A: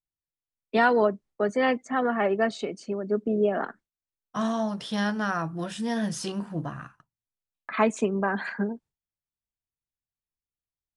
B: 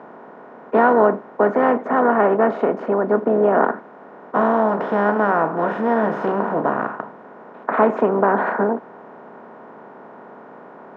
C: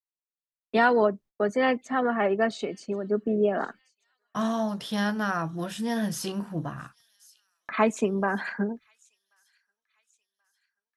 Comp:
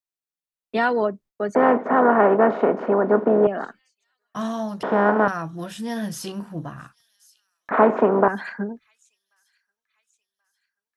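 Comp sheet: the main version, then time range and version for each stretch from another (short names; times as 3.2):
C
1.55–3.47 from B
4.83–5.28 from B
7.71–8.28 from B
not used: A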